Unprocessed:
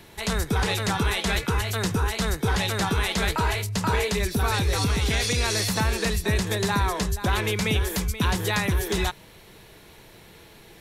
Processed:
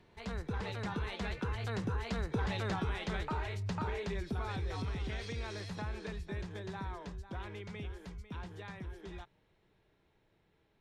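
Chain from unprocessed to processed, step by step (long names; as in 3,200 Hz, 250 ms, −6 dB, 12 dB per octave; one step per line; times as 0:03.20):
source passing by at 0:02.62, 13 m/s, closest 2.8 metres
downward compressor 6 to 1, threshold −41 dBFS, peak gain reduction 17.5 dB
head-to-tape spacing loss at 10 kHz 21 dB
level +9 dB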